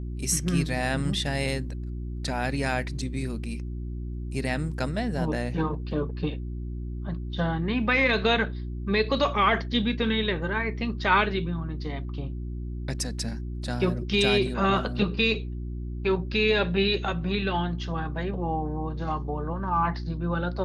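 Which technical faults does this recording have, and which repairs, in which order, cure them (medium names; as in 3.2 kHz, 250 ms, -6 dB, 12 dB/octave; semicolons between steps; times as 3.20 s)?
hum 60 Hz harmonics 6 -33 dBFS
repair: de-hum 60 Hz, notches 6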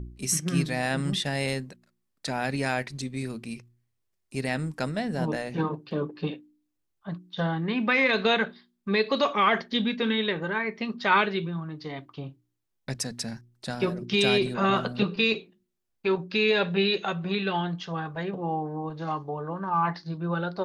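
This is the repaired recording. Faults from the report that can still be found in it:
nothing left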